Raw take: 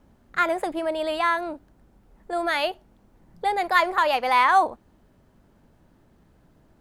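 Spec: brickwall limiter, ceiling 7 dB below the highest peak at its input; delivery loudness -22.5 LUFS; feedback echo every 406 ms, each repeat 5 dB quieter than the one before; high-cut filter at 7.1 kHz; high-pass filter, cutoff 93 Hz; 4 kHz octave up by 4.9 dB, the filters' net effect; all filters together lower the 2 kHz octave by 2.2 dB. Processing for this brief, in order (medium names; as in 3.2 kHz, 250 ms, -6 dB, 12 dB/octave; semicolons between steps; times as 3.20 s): high-pass 93 Hz; low-pass 7.1 kHz; peaking EQ 2 kHz -4.5 dB; peaking EQ 4 kHz +8 dB; peak limiter -14.5 dBFS; feedback delay 406 ms, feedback 56%, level -5 dB; trim +3.5 dB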